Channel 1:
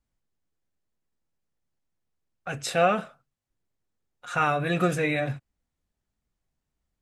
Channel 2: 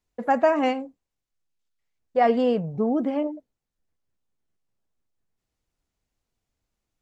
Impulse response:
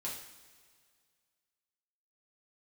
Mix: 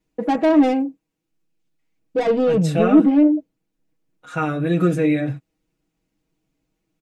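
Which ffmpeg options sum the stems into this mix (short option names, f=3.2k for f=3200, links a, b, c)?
-filter_complex "[0:a]volume=-6dB[a];[1:a]equalizer=f=2.5k:t=o:w=0.55:g=6,asoftclip=type=tanh:threshold=-23dB,volume=-1dB[b];[a][b]amix=inputs=2:normalize=0,equalizer=f=270:w=0.85:g=14.5,aecho=1:1:6.3:0.89"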